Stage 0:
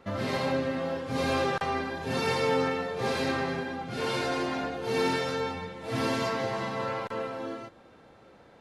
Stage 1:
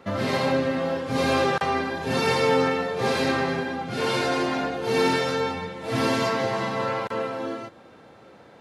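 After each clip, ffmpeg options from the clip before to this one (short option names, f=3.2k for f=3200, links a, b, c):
-af "highpass=87,volume=5.5dB"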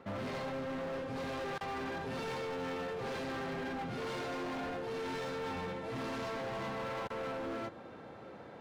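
-af "highshelf=f=3.7k:g=-10.5,areverse,acompressor=threshold=-32dB:ratio=6,areverse,asoftclip=type=hard:threshold=-36.5dB"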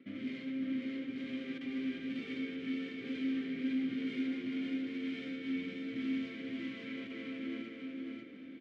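-filter_complex "[0:a]asplit=3[a][b][c];[a]bandpass=f=270:t=q:w=8,volume=0dB[d];[b]bandpass=f=2.29k:t=q:w=8,volume=-6dB[e];[c]bandpass=f=3.01k:t=q:w=8,volume=-9dB[f];[d][e][f]amix=inputs=3:normalize=0,aecho=1:1:547|1094|1641|2188:0.708|0.241|0.0818|0.0278,volume=8.5dB"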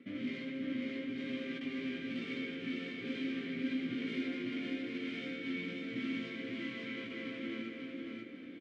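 -filter_complex "[0:a]aresample=22050,aresample=44100,asplit=2[a][b];[b]adelay=17,volume=-5.5dB[c];[a][c]amix=inputs=2:normalize=0,volume=2dB"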